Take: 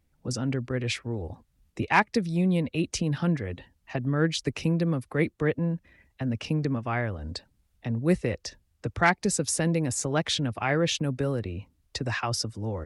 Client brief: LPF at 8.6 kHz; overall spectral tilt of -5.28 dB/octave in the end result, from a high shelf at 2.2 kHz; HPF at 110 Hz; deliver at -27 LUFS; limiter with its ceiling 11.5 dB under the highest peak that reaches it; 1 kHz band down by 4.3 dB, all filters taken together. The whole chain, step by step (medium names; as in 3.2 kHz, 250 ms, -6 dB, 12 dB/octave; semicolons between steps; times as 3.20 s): high-pass 110 Hz; low-pass 8.6 kHz; peaking EQ 1 kHz -5 dB; treble shelf 2.2 kHz -3.5 dB; trim +7 dB; peak limiter -16.5 dBFS